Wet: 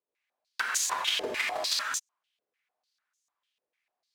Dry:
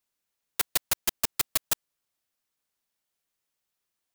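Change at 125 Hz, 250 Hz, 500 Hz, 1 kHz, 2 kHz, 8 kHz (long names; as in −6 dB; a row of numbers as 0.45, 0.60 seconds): below −10 dB, −2.0 dB, +6.0 dB, +6.5 dB, +6.5 dB, 0.0 dB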